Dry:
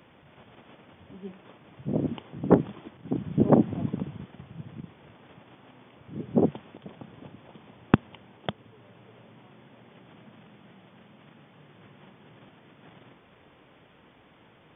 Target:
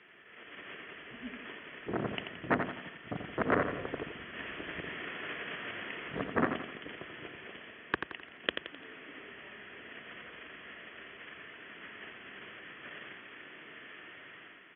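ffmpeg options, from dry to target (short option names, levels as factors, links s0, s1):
-filter_complex "[0:a]equalizer=f=1200:t=o:w=2.7:g=-14.5,dynaudnorm=f=130:g=7:m=2.51,asplit=2[s0][s1];[s1]alimiter=limit=0.251:level=0:latency=1:release=423,volume=1.26[s2];[s0][s2]amix=inputs=2:normalize=0,asettb=1/sr,asplit=3[s3][s4][s5];[s3]atrim=end=4.354[s6];[s4]atrim=start=4.35:end=6.24,asetpts=PTS-STARTPTS,afade=t=in:d=0.004:c=qsin,afade=t=out:st=1.886:d=0.004:c=qsin,acontrast=76[s7];[s5]atrim=start=6.236[s8];[s6][s7]acrossfade=d=0.004:c1=hsin:c2=qsin[s9];[s9][s8]acrossfade=d=0.004:c1=qsin:c2=hsin,asoftclip=type=tanh:threshold=0.211,afreqshift=-150,highpass=500,equalizer=f=540:t=q:w=4:g=-5,equalizer=f=830:t=q:w=4:g=-10,equalizer=f=1300:t=q:w=4:g=3,equalizer=f=1800:t=q:w=4:g=9,lowpass=f=3000:w=0.5412,lowpass=f=3000:w=1.3066,asplit=2[s10][s11];[s11]aecho=0:1:86|172|258|344|430:0.447|0.188|0.0788|0.0331|0.0139[s12];[s10][s12]amix=inputs=2:normalize=0,volume=1.58"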